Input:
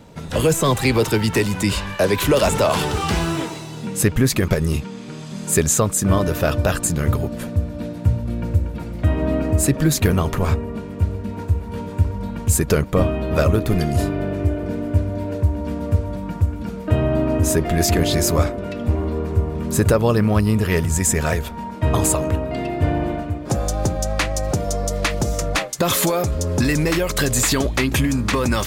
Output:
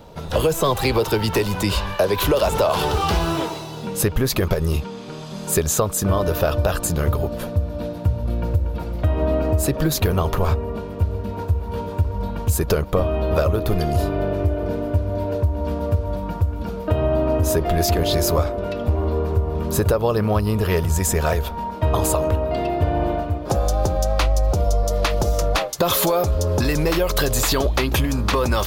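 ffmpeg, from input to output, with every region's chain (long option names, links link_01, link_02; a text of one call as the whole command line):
ffmpeg -i in.wav -filter_complex "[0:a]asettb=1/sr,asplit=3[link_01][link_02][link_03];[link_01]atrim=end=24.204[link_04];[link_02]atrim=start=24.2:end=24.83,asetpts=PTS-STARTPTS,afade=type=in:duration=0.004:curve=qsin,afade=type=out:start_time=0.626:duration=0.004:curve=qsin,equalizer=frequency=62:width=1.5:gain=9.5,bandreject=frequency=1700:width=7.6[link_05];[link_03]atrim=start=24.826[link_06];[link_04][link_05]acrossfade=duration=0.004:curve1=hsin:curve2=qsin[link_07];[link_07][link_06]acrossfade=duration=0.004:curve1=qsin:curve2=hsin,equalizer=frequency=125:width_type=o:width=1:gain=-7,equalizer=frequency=250:width_type=o:width=1:gain=-9,equalizer=frequency=2000:width_type=o:width=1:gain=-9,equalizer=frequency=8000:width_type=o:width=1:gain=-11,acompressor=threshold=-21dB:ratio=6,volume=6.5dB" out.wav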